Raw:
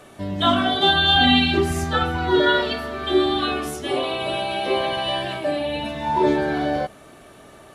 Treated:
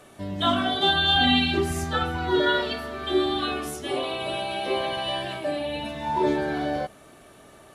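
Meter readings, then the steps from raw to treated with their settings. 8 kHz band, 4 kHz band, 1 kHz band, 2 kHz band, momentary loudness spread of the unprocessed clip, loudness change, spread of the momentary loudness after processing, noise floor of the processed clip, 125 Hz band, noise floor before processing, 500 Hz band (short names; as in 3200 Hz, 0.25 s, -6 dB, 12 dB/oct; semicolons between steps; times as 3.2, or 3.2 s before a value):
-2.0 dB, -4.0 dB, -4.5 dB, -4.5 dB, 11 LU, -4.0 dB, 11 LU, -51 dBFS, -4.5 dB, -46 dBFS, -4.5 dB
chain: bell 11000 Hz +3 dB 1.6 oct; gain -4.5 dB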